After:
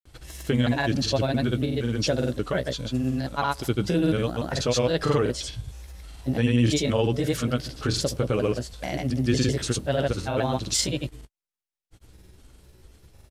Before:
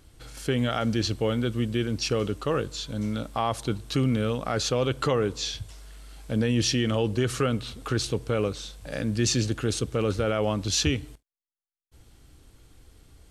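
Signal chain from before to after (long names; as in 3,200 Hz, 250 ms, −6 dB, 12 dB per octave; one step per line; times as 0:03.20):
pitch shifter gated in a rhythm +3.5 semitones, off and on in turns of 229 ms
double-tracking delay 16 ms −11 dB
granular cloud, pitch spread up and down by 0 semitones
level +3 dB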